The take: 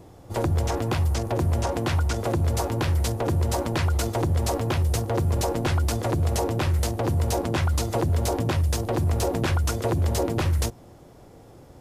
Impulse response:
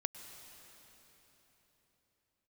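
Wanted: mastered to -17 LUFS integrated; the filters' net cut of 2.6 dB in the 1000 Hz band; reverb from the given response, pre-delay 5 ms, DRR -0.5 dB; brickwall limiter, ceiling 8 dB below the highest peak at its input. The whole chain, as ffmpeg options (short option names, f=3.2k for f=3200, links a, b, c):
-filter_complex "[0:a]equalizer=f=1k:t=o:g=-3.5,alimiter=limit=-22dB:level=0:latency=1,asplit=2[a][b];[1:a]atrim=start_sample=2205,adelay=5[c];[b][c]afir=irnorm=-1:irlink=0,volume=1dB[d];[a][d]amix=inputs=2:normalize=0,volume=12dB"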